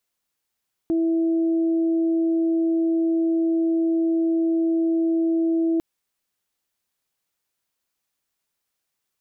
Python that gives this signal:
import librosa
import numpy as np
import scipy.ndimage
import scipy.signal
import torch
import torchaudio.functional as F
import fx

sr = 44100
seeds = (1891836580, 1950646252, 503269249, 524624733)

y = fx.additive_steady(sr, length_s=4.9, hz=329.0, level_db=-18.0, upper_db=(-18,))